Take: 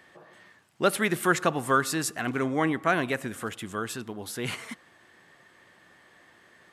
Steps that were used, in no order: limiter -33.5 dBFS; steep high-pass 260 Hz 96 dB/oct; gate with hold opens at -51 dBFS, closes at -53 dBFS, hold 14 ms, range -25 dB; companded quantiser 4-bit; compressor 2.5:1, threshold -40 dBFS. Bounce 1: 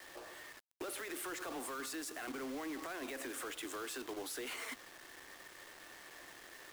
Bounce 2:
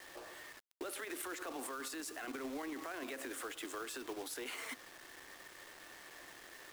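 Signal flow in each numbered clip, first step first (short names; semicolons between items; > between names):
gate with hold > steep high-pass > limiter > compressor > companded quantiser; steep high-pass > gate with hold > companded quantiser > limiter > compressor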